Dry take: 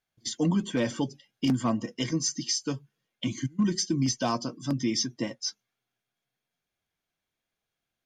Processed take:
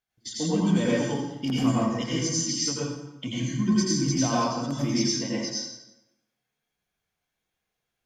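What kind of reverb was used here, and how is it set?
plate-style reverb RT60 0.95 s, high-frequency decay 0.75×, pre-delay 75 ms, DRR -7 dB; trim -4 dB

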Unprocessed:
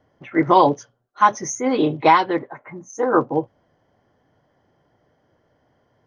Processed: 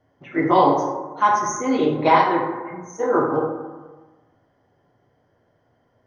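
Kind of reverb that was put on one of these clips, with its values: plate-style reverb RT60 1.3 s, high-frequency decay 0.4×, DRR -1.5 dB; trim -4.5 dB

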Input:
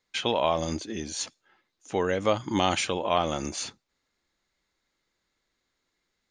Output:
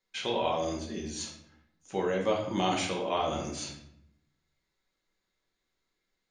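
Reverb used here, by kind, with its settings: simulated room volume 160 m³, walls mixed, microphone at 1.1 m; trim -8 dB

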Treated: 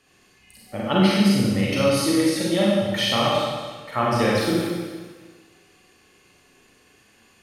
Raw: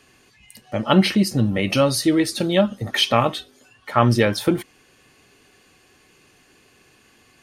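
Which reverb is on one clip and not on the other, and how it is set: Schroeder reverb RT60 1.5 s, combs from 31 ms, DRR -6 dB; trim -8 dB

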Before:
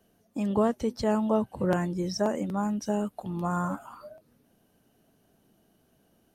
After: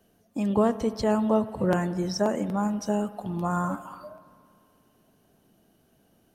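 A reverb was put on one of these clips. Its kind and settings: spring tank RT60 2.3 s, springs 59 ms, chirp 50 ms, DRR 14 dB; trim +2 dB

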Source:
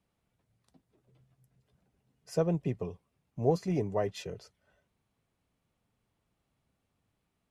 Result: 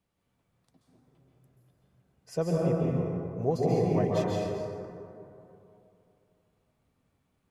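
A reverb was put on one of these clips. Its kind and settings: plate-style reverb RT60 2.8 s, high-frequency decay 0.35×, pre-delay 120 ms, DRR -4 dB; trim -1.5 dB

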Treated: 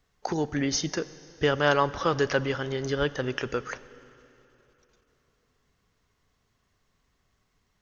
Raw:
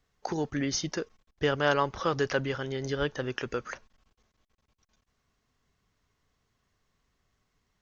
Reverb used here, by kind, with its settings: plate-style reverb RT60 3.3 s, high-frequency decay 0.95×, DRR 16 dB; trim +3 dB

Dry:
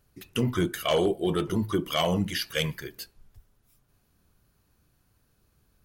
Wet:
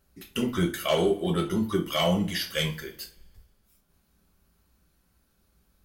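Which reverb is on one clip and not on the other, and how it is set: two-slope reverb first 0.28 s, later 1.5 s, from -26 dB, DRR 1 dB; trim -2 dB

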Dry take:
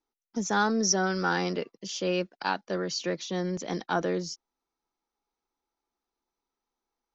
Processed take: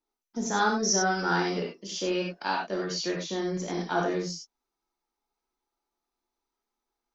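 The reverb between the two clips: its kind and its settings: gated-style reverb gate 120 ms flat, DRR -1.5 dB; trim -3 dB

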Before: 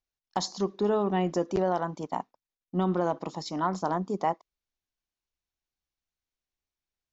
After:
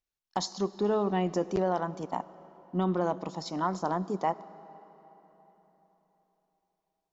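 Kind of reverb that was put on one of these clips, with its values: algorithmic reverb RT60 4 s, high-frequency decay 0.75×, pre-delay 40 ms, DRR 17.5 dB; trim -1.5 dB

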